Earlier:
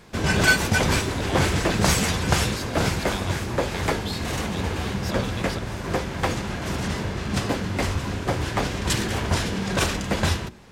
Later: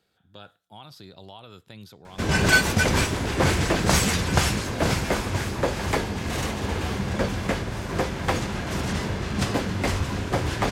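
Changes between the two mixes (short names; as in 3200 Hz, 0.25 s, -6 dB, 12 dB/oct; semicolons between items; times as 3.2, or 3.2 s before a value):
speech -10.5 dB; background: entry +2.05 s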